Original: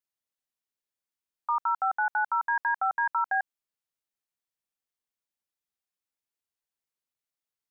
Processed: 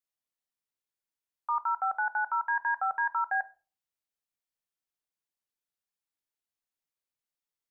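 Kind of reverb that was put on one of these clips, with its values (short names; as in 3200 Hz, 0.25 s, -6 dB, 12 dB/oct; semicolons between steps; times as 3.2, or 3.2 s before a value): shoebox room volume 230 m³, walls furnished, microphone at 0.4 m; gain -3 dB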